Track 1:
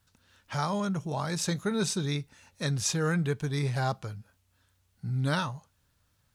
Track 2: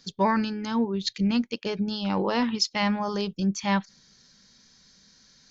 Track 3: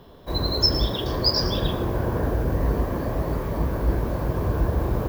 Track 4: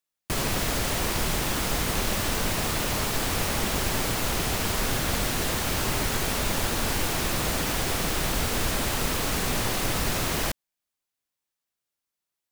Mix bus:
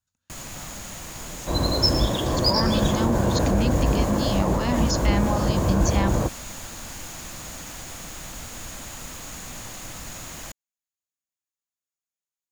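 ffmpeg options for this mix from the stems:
-filter_complex "[0:a]volume=-17dB[a];[1:a]adelay=2300,volume=2.5dB[b];[2:a]equalizer=f=410:w=0.32:g=6,adynamicsmooth=sensitivity=6.5:basefreq=5.1k,adelay=1200,volume=-0.5dB[c];[3:a]volume=-11.5dB[d];[a][b][d]amix=inputs=3:normalize=0,equalizer=f=6.8k:w=6.5:g=13.5,alimiter=limit=-18dB:level=0:latency=1:release=28,volume=0dB[e];[c][e]amix=inputs=2:normalize=0,equalizer=f=410:w=4.6:g=-9.5"

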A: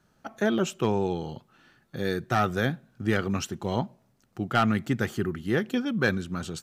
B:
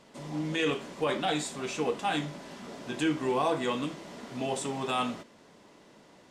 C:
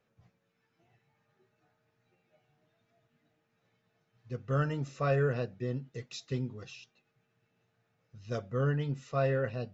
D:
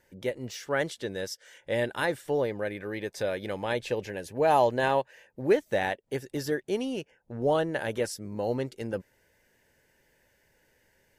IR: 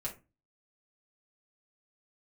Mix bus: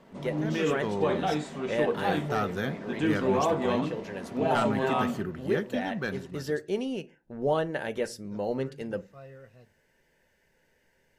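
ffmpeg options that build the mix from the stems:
-filter_complex "[0:a]dynaudnorm=f=110:g=13:m=11.5dB,volume=-16.5dB,asplit=3[a][b][c];[b]volume=-12dB[d];[1:a]lowpass=f=1.2k:p=1,volume=1dB,asplit=2[e][f];[f]volume=-9dB[g];[2:a]volume=-18.5dB[h];[3:a]highshelf=f=7.5k:g=-8,volume=-3dB,asplit=2[i][j];[j]volume=-8.5dB[k];[c]apad=whole_len=493078[l];[i][l]sidechaincompress=threshold=-41dB:ratio=3:attack=10:release=325[m];[4:a]atrim=start_sample=2205[n];[d][g][k]amix=inputs=3:normalize=0[o];[o][n]afir=irnorm=-1:irlink=0[p];[a][e][h][m][p]amix=inputs=5:normalize=0"

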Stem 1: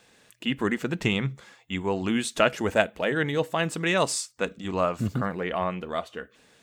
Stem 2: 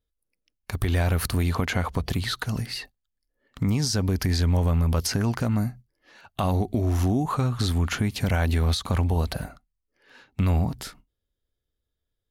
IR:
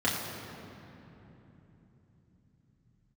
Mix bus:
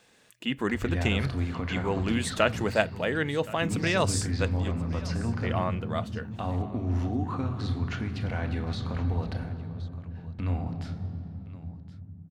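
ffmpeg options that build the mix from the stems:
-filter_complex "[0:a]volume=-2.5dB,asplit=3[a][b][c];[a]atrim=end=4.72,asetpts=PTS-STARTPTS,afade=t=out:st=4.716:d=0.004:c=hsin[d];[b]atrim=start=4.72:end=5.43,asetpts=PTS-STARTPTS,volume=0[e];[c]atrim=start=5.43,asetpts=PTS-STARTPTS,afade=t=in:d=0.004:c=hsin[f];[d][e][f]concat=n=3:v=0:a=1,asplit=2[g][h];[h]volume=-20dB[i];[1:a]agate=range=-33dB:threshold=-47dB:ratio=3:detection=peak,lowpass=4.4k,volume=-10.5dB,asplit=3[j][k][l];[k]volume=-14dB[m];[l]volume=-15dB[n];[2:a]atrim=start_sample=2205[o];[m][o]afir=irnorm=-1:irlink=0[p];[i][n]amix=inputs=2:normalize=0,aecho=0:1:1070:1[q];[g][j][p][q]amix=inputs=4:normalize=0"

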